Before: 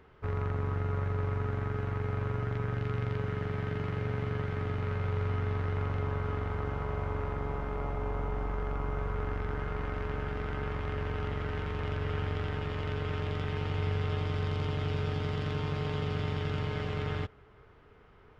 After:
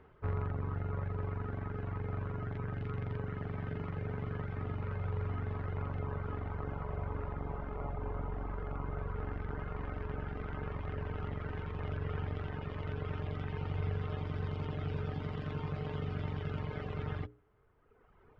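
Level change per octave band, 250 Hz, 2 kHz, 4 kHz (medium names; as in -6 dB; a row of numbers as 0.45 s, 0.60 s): -4.0 dB, -7.5 dB, -11.0 dB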